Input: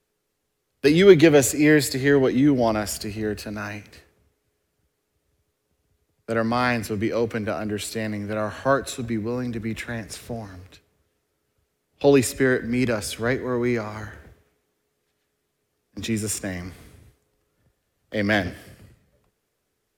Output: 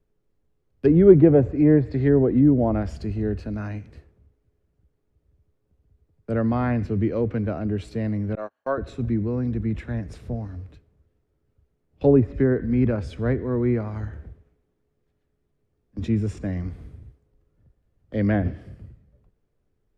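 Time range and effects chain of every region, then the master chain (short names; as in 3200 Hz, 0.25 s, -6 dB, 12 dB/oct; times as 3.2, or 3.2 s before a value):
8.35–8.78 HPF 480 Hz + gate -29 dBFS, range -34 dB
whole clip: treble ducked by the level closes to 1200 Hz, closed at -14.5 dBFS; tilt -4 dB/oct; gain -6 dB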